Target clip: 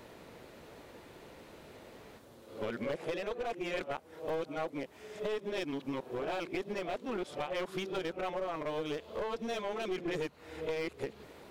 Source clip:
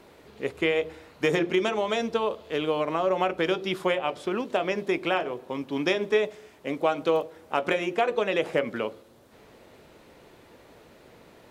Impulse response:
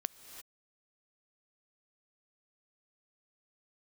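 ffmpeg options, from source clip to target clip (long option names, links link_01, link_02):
-af "areverse,acompressor=threshold=-32dB:ratio=5,aeval=exprs='clip(val(0),-1,0.02)':channel_layout=same"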